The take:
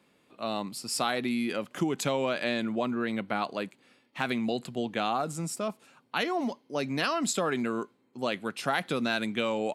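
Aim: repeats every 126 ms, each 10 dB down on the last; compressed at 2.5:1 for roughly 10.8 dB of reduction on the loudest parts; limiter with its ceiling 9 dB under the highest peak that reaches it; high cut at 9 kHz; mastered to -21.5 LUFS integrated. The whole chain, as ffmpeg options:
-af "lowpass=9000,acompressor=threshold=0.00891:ratio=2.5,alimiter=level_in=2.24:limit=0.0631:level=0:latency=1,volume=0.447,aecho=1:1:126|252|378|504:0.316|0.101|0.0324|0.0104,volume=10.6"

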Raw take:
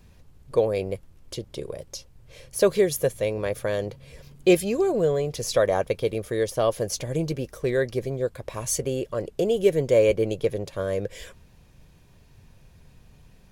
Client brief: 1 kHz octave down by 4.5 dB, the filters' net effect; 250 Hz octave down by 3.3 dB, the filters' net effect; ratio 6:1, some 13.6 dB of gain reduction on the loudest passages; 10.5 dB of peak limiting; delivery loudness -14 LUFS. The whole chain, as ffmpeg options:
-af "equalizer=f=250:t=o:g=-5,equalizer=f=1000:t=o:g=-6.5,acompressor=threshold=0.0282:ratio=6,volume=17.8,alimiter=limit=0.668:level=0:latency=1"

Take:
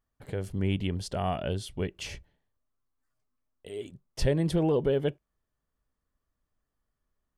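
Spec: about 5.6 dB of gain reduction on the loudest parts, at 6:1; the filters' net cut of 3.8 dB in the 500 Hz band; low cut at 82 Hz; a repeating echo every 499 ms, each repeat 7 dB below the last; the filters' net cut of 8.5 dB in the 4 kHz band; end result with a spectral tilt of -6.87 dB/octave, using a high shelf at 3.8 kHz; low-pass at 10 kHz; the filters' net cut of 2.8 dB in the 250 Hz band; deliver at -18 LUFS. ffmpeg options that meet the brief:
-af "highpass=82,lowpass=10000,equalizer=f=250:t=o:g=-3,equalizer=f=500:t=o:g=-3.5,highshelf=f=3800:g=-7,equalizer=f=4000:t=o:g=-7.5,acompressor=threshold=0.0316:ratio=6,aecho=1:1:499|998|1497|1996|2495:0.447|0.201|0.0905|0.0407|0.0183,volume=10"

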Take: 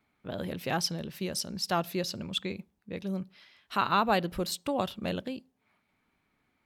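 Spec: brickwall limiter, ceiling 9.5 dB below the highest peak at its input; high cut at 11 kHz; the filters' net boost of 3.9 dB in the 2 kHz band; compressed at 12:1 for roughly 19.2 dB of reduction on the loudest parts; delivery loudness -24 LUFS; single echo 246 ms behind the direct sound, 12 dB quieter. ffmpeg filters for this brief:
-af "lowpass=11000,equalizer=f=2000:t=o:g=5.5,acompressor=threshold=0.0112:ratio=12,alimiter=level_in=4.47:limit=0.0631:level=0:latency=1,volume=0.224,aecho=1:1:246:0.251,volume=14.1"

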